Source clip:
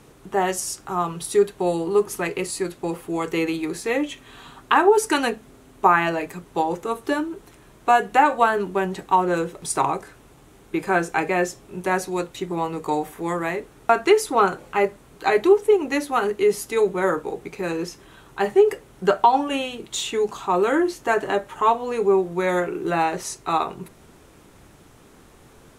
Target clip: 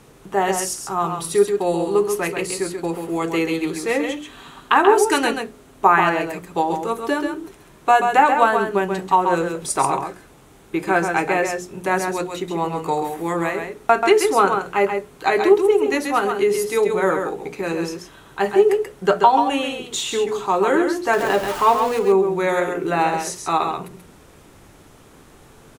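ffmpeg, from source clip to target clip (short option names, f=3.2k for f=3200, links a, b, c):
-filter_complex "[0:a]asettb=1/sr,asplit=3[a][b][c];[a]atrim=end=21.134[d];[b]atrim=start=21.13:end=21.99,asetpts=PTS-STARTPTS,afade=t=in:d=0.004:c=qsin,afade=t=out:st=0.856:d=0.004:c=qsin,aeval=exprs='val(0)+0.5*0.0376*sgn(val(0))':c=same[e];[c]atrim=start=21.986[f];[d][e]acrossfade=d=0.004:c1=hsin:c2=qsin[g];[g][f]acrossfade=d=0.004:c1=qsin:c2=hsin,bandreject=f=60:t=h:w=6,bandreject=f=120:t=h:w=6,bandreject=f=180:t=h:w=6,bandreject=f=240:t=h:w=6,bandreject=f=300:t=h:w=6,bandreject=f=360:t=h:w=6,bandreject=f=420:t=h:w=6,aecho=1:1:134:0.501,volume=2dB"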